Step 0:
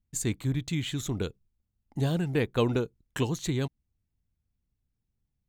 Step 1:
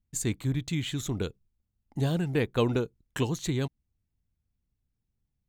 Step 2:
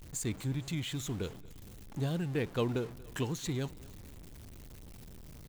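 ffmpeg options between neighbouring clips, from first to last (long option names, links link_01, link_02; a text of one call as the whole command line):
ffmpeg -i in.wav -af anull out.wav
ffmpeg -i in.wav -af "aeval=exprs='val(0)+0.5*0.0158*sgn(val(0))':channel_layout=same,aecho=1:1:233|466|699|932:0.0794|0.0437|0.024|0.0132,volume=-7dB" out.wav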